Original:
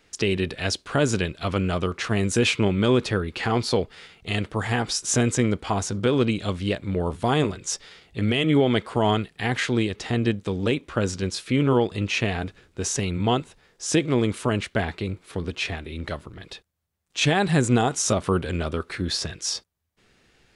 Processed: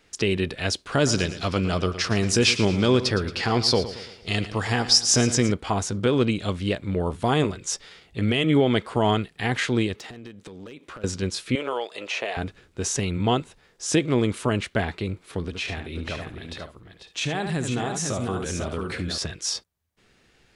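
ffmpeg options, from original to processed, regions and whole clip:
ffmpeg -i in.wav -filter_complex "[0:a]asettb=1/sr,asplit=3[link_01][link_02][link_03];[link_01]atrim=end=0.924[link_04];[link_02]atrim=start=0.92:end=5.52,asetpts=PTS-STARTPTS,afade=type=in:duration=0.004:curve=qsin,afade=type=out:start_time=4.596:duration=0.004:curve=qsin,equalizer=frequency=5100:width=2.9:gain=13,aecho=1:1:113|226|339|452|565:0.211|0.0993|0.0467|0.0219|0.0103,atrim=end_sample=202860[link_05];[link_03]atrim=start=5.516[link_06];[link_04][link_05]acrossfade=duration=0.004:curve1=hsin:curve2=qsin[link_07];[link_07][link_06]acrossfade=duration=0.004:curve1=qsin:curve2=hsin,asettb=1/sr,asplit=3[link_08][link_09][link_10];[link_08]atrim=end=9.974[link_11];[link_09]atrim=start=9.97:end=11.04,asetpts=PTS-STARTPTS,afade=type=in:duration=0.004:curve=qsin,afade=type=out:start_time=1.066:duration=0.004:curve=qsin,highpass=frequency=220:poles=1,acompressor=threshold=-35dB:ratio=16:attack=3.2:release=140:knee=1:detection=peak,asoftclip=type=hard:threshold=-32.5dB[link_12];[link_10]atrim=start=11.036[link_13];[link_11][link_12]acrossfade=duration=0.004:curve1=hsin:curve2=qsin[link_14];[link_14][link_13]acrossfade=duration=0.004:curve1=qsin:curve2=hsin,asettb=1/sr,asplit=3[link_15][link_16][link_17];[link_15]atrim=end=11.554[link_18];[link_16]atrim=start=11.55:end=12.37,asetpts=PTS-STARTPTS,afade=type=in:duration=0.004:curve=qsin,afade=type=out:start_time=0.816:duration=0.004:curve=qsin,highpass=frequency=590:width_type=q:width=2.4,acrossover=split=1400|7600[link_19][link_20][link_21];[link_19]acompressor=threshold=-28dB:ratio=4[link_22];[link_20]acompressor=threshold=-28dB:ratio=4[link_23];[link_21]acompressor=threshold=-55dB:ratio=4[link_24];[link_22][link_23][link_24]amix=inputs=3:normalize=0[link_25];[link_17]atrim=start=12.366[link_26];[link_18][link_25]acrossfade=duration=0.004:curve1=hsin:curve2=qsin[link_27];[link_27][link_26]acrossfade=duration=0.004:curve1=qsin:curve2=hsin,asettb=1/sr,asplit=3[link_28][link_29][link_30];[link_28]atrim=end=15.454[link_31];[link_29]atrim=start=15.45:end=19.18,asetpts=PTS-STARTPTS,afade=type=in:duration=0.004:curve=qsin,afade=type=out:start_time=3.726:duration=0.004:curve=qsin,aecho=1:1:73|479|496|553:0.355|0.133|0.422|0.126,atrim=end_sample=164493,acompressor=threshold=-26dB:ratio=2.5:attack=3.2:release=140:knee=1:detection=peak[link_32];[link_30]atrim=start=19.176[link_33];[link_31][link_32]acrossfade=duration=0.004:curve1=hsin:curve2=qsin[link_34];[link_34][link_33]acrossfade=duration=0.004:curve1=qsin:curve2=hsin" out.wav

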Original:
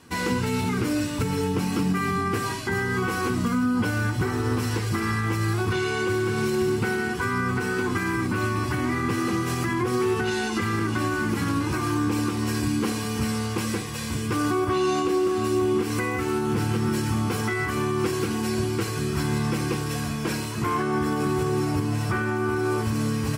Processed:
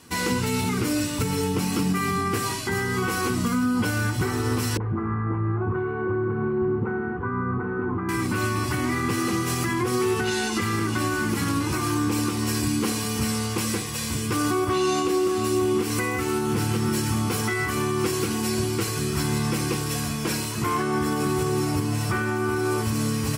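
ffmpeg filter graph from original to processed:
ffmpeg -i in.wav -filter_complex "[0:a]asettb=1/sr,asplit=3[link_01][link_02][link_03];[link_01]atrim=end=4.774[link_04];[link_02]atrim=start=4.77:end=8.09,asetpts=PTS-STARTPTS,afade=type=in:duration=0.004:curve=qsin,afade=type=out:start_time=3.316:duration=0.004:curve=qsin,lowpass=frequency=1300:width=0.5412,lowpass=frequency=1300:width=1.3066,acrossover=split=570[link_05][link_06];[link_06]adelay=30[link_07];[link_05][link_07]amix=inputs=2:normalize=0,atrim=end_sample=146412[link_08];[link_03]atrim=start=8.086[link_09];[link_04][link_08]acrossfade=duration=0.004:curve1=hsin:curve2=qsin[link_10];[link_10][link_09]acrossfade=duration=0.004:curve1=qsin:curve2=hsin,highshelf=frequency=4200:gain=7.5,bandreject=frequency=1600:width=29" out.wav

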